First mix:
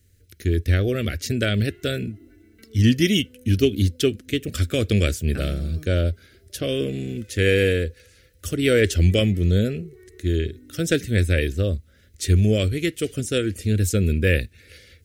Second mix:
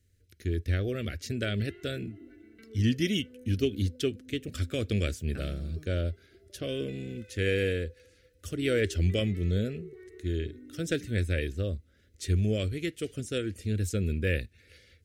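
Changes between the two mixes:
speech −9.0 dB
master: add high-shelf EQ 11,000 Hz −8.5 dB

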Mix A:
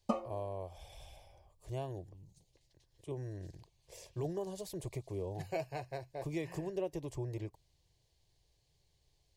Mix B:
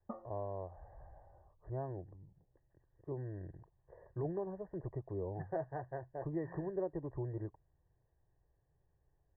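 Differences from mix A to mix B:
background −11.5 dB
master: add Chebyshev low-pass filter 1,900 Hz, order 10

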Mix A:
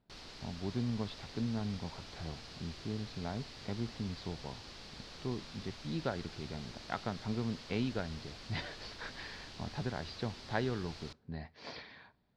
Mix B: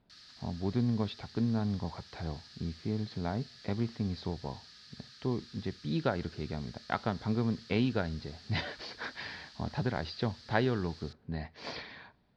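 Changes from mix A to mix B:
speech +5.5 dB
background: add Chebyshev high-pass with heavy ripple 1,200 Hz, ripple 9 dB

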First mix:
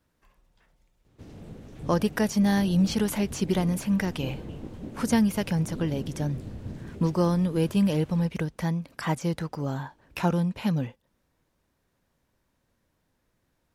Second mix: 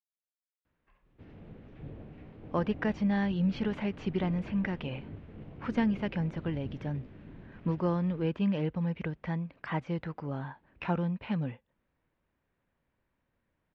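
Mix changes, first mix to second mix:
speech: entry +0.65 s
master: add transistor ladder low-pass 3,300 Hz, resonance 25%

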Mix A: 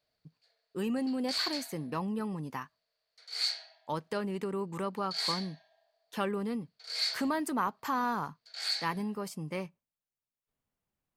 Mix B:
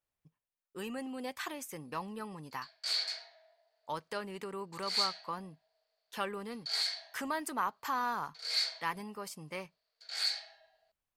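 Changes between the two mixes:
speech: add parametric band 200 Hz −10.5 dB 2.6 octaves
background: entry +1.55 s

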